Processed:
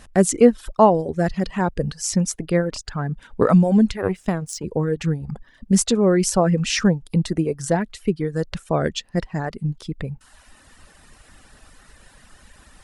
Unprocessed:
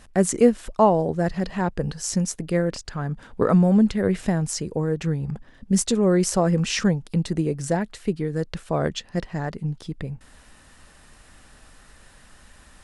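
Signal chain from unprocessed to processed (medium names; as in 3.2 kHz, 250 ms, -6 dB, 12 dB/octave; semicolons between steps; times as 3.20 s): 3.97–4.64 s: power-law waveshaper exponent 1.4; reverb removal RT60 0.89 s; trim +3.5 dB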